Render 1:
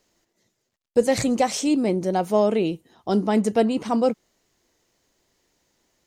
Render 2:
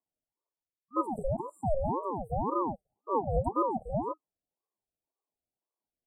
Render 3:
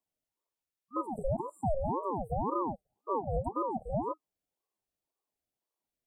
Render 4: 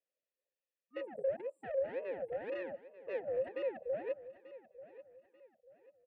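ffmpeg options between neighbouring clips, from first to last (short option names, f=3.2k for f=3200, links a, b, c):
-af "afwtdn=0.0631,afftfilt=real='re*(1-between(b*sr/4096,480,7900))':imag='im*(1-between(b*sr/4096,480,7900))':win_size=4096:overlap=0.75,aeval=exprs='val(0)*sin(2*PI*530*n/s+530*0.5/1.9*sin(2*PI*1.9*n/s))':c=same,volume=-5dB"
-af "alimiter=limit=-23.5dB:level=0:latency=1:release=423,volume=1.5dB"
-filter_complex "[0:a]asoftclip=type=tanh:threshold=-32dB,asplit=3[a][b][c];[a]bandpass=f=530:t=q:w=8,volume=0dB[d];[b]bandpass=f=1.84k:t=q:w=8,volume=-6dB[e];[c]bandpass=f=2.48k:t=q:w=8,volume=-9dB[f];[d][e][f]amix=inputs=3:normalize=0,aecho=1:1:888|1776|2664:0.158|0.0555|0.0194,volume=8.5dB"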